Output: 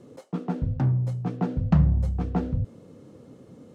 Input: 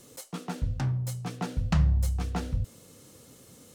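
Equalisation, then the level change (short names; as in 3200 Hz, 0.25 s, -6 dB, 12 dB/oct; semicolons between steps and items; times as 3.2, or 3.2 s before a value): band-pass 260 Hz, Q 0.59; +8.5 dB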